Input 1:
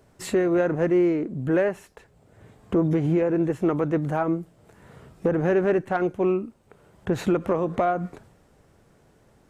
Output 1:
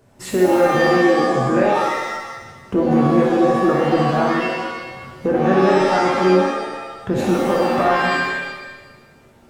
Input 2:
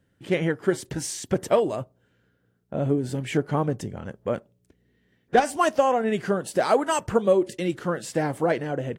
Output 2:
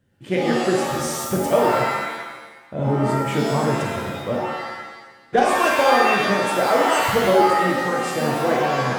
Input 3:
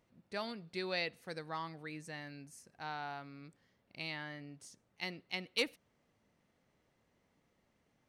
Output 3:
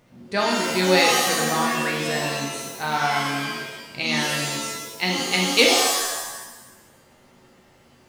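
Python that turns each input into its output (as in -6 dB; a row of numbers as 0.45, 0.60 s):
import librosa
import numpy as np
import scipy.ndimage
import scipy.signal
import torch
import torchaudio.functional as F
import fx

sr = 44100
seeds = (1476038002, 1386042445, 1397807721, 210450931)

y = fx.rev_shimmer(x, sr, seeds[0], rt60_s=1.1, semitones=7, shimmer_db=-2, drr_db=-1.0)
y = y * 10.0 ** (-3 / 20.0) / np.max(np.abs(y))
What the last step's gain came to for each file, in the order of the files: +1.0, -1.0, +15.0 dB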